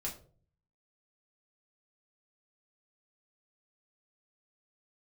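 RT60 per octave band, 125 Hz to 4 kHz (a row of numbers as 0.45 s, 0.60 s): 0.85 s, 0.65 s, 0.55 s, 0.35 s, 0.30 s, 0.25 s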